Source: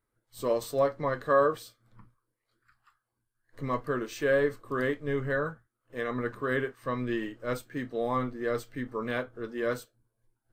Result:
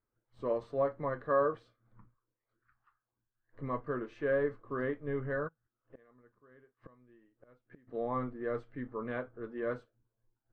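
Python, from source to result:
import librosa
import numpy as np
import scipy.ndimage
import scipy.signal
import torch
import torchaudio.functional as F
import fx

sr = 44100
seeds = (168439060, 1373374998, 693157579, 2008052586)

y = scipy.signal.sosfilt(scipy.signal.butter(2, 1700.0, 'lowpass', fs=sr, output='sos'), x)
y = fx.gate_flip(y, sr, shuts_db=-35.0, range_db=-26, at=(5.47, 7.87), fade=0.02)
y = y * librosa.db_to_amplitude(-5.0)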